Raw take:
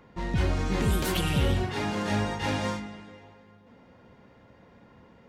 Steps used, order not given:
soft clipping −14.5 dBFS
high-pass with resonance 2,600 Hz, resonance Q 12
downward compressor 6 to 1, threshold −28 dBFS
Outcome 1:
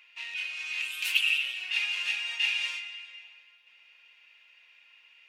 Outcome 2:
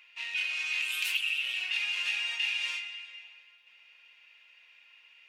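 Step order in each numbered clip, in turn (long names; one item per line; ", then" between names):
downward compressor, then soft clipping, then high-pass with resonance
soft clipping, then high-pass with resonance, then downward compressor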